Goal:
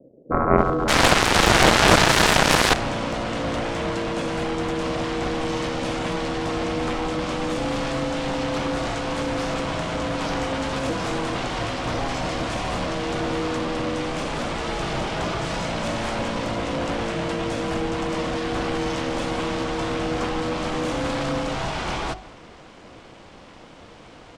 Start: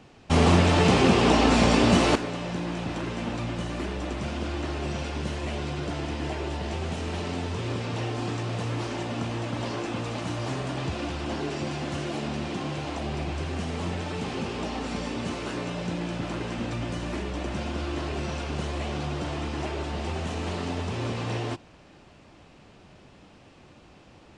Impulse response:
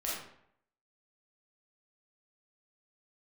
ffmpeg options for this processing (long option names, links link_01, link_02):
-filter_complex "[0:a]bandreject=frequency=50:width_type=h:width=6,bandreject=frequency=100:width_type=h:width=6,bandreject=frequency=150:width_type=h:width=6,bandreject=frequency=200:width_type=h:width=6,bandreject=frequency=250:width_type=h:width=6,bandreject=frequency=300:width_type=h:width=6,bandreject=frequency=350:width_type=h:width=6,bandreject=frequency=400:width_type=h:width=6,bandreject=frequency=450:width_type=h:width=6,acrossover=split=190[link_01][link_02];[link_02]adelay=580[link_03];[link_01][link_03]amix=inputs=2:normalize=0,asplit=2[link_04][link_05];[1:a]atrim=start_sample=2205,adelay=146[link_06];[link_05][link_06]afir=irnorm=-1:irlink=0,volume=-25.5dB[link_07];[link_04][link_07]amix=inputs=2:normalize=0,aeval=exprs='val(0)*sin(2*PI*400*n/s)':channel_layout=same,aeval=exprs='0.355*(cos(1*acos(clip(val(0)/0.355,-1,1)))-cos(1*PI/2))+0.0112*(cos(3*acos(clip(val(0)/0.355,-1,1)))-cos(3*PI/2))+0.112*(cos(5*acos(clip(val(0)/0.355,-1,1)))-cos(5*PI/2))+0.178*(cos(7*acos(clip(val(0)/0.355,-1,1)))-cos(7*PI/2))':channel_layout=same,asplit=2[link_08][link_09];[link_09]asetrate=22050,aresample=44100,atempo=2,volume=-9dB[link_10];[link_08][link_10]amix=inputs=2:normalize=0,alimiter=level_in=11.5dB:limit=-1dB:release=50:level=0:latency=1,volume=-1dB"